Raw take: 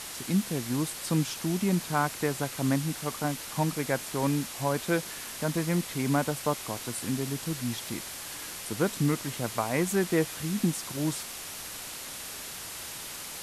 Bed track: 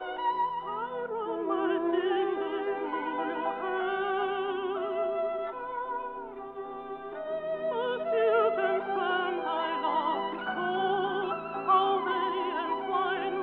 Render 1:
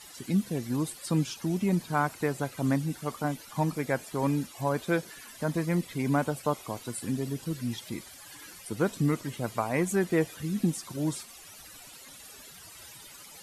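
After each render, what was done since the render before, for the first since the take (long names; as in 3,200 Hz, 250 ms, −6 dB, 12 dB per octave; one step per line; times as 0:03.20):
broadband denoise 15 dB, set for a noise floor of −40 dBFS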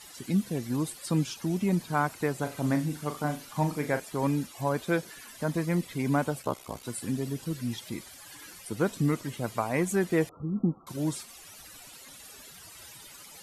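0:02.38–0:04.00: flutter between parallel walls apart 6.8 metres, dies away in 0.27 s
0:06.42–0:06.84: ring modulation 32 Hz
0:10.29–0:10.87: linear-phase brick-wall low-pass 1,400 Hz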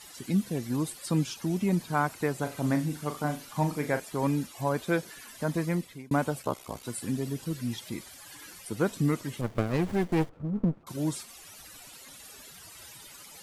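0:05.67–0:06.11: fade out
0:09.41–0:10.84: windowed peak hold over 33 samples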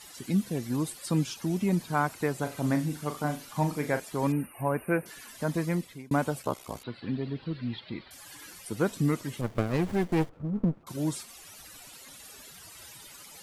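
0:04.32–0:05.06: linear-phase brick-wall band-stop 2,900–8,500 Hz
0:06.83–0:08.11: elliptic low-pass filter 4,300 Hz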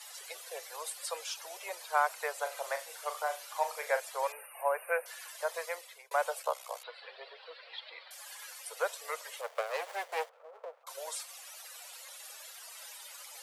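Butterworth high-pass 490 Hz 72 dB per octave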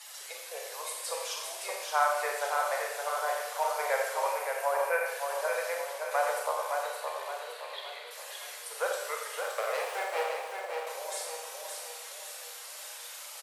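on a send: repeating echo 568 ms, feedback 45%, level −5 dB
on the sum: four-comb reverb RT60 1 s, combs from 29 ms, DRR 0 dB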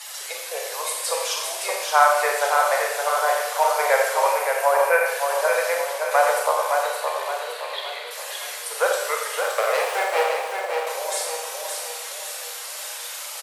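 level +10.5 dB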